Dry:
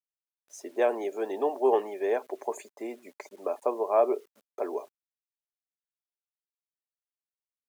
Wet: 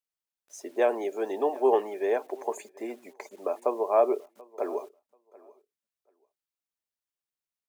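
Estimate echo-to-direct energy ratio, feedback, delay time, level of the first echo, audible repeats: −23.0 dB, repeats not evenly spaced, 735 ms, −23.0 dB, 1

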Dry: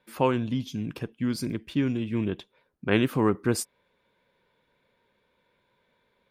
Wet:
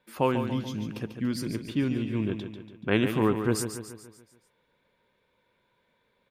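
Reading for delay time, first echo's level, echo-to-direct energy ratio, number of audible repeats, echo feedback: 143 ms, −8.5 dB, −7.0 dB, 5, 51%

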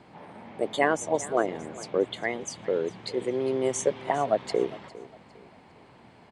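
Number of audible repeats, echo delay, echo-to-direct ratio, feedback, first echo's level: 2, 405 ms, −18.0 dB, 32%, −18.5 dB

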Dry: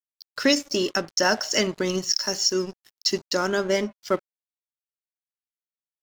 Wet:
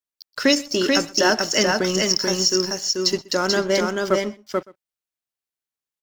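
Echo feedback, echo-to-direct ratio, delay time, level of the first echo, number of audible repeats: repeats not evenly spaced, −3.0 dB, 125 ms, −23.0 dB, 3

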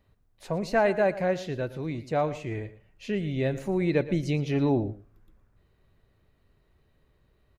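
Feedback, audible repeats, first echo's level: repeats not evenly spaced, 1, −16.0 dB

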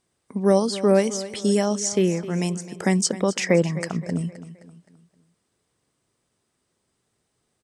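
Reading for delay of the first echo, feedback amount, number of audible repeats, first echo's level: 261 ms, 43%, 3, −15.0 dB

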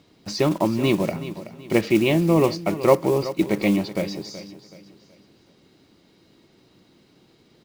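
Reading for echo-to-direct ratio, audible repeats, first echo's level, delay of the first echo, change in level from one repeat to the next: −13.5 dB, 3, −14.0 dB, 376 ms, −8.5 dB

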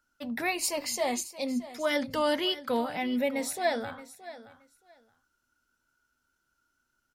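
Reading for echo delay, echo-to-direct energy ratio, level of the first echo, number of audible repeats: 623 ms, −16.0 dB, −16.0 dB, 2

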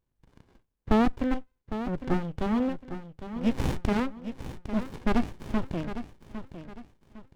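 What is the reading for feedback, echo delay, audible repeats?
35%, 806 ms, 3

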